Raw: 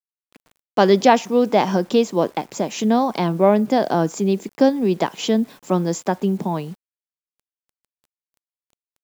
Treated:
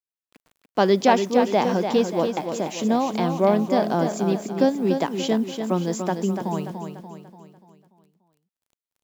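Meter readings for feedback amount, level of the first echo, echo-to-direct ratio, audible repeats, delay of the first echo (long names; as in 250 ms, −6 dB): 47%, −7.0 dB, −6.0 dB, 5, 291 ms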